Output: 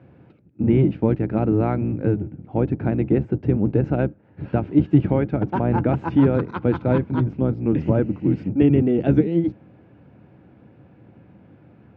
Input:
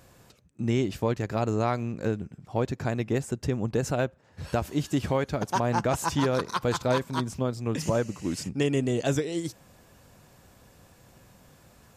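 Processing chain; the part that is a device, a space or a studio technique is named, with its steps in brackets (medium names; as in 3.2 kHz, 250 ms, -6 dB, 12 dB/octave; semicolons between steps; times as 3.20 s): sub-octave bass pedal (octave divider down 1 oct, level +1 dB; cabinet simulation 89–2200 Hz, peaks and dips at 130 Hz +4 dB, 200 Hz +4 dB, 310 Hz +9 dB, 640 Hz -3 dB, 1.1 kHz -10 dB, 1.8 kHz -7 dB); trim +4 dB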